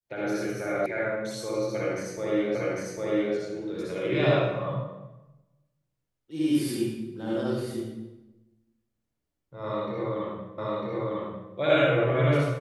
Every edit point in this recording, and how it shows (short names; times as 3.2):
0.86 sound cut off
2.55 repeat of the last 0.8 s
10.58 repeat of the last 0.95 s